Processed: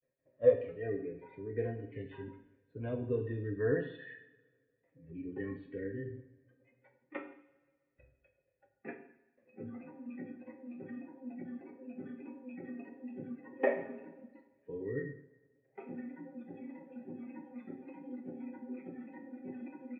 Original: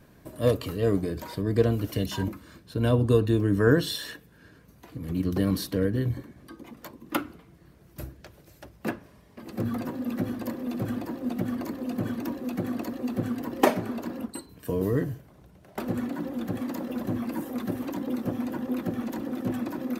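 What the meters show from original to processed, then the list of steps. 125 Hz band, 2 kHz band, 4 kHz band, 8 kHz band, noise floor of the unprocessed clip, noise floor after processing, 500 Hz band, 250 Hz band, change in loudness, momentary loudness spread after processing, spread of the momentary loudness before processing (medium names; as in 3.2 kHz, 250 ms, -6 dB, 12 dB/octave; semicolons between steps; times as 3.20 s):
-16.0 dB, -10.0 dB, under -25 dB, under -35 dB, -55 dBFS, -79 dBFS, -7.5 dB, -15.0 dB, -11.0 dB, 17 LU, 18 LU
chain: gate with hold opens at -45 dBFS; spectral noise reduction 18 dB; cascade formant filter e; comb 7.5 ms, depth 67%; two-slope reverb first 0.65 s, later 1.8 s, DRR 3.5 dB; trim +1 dB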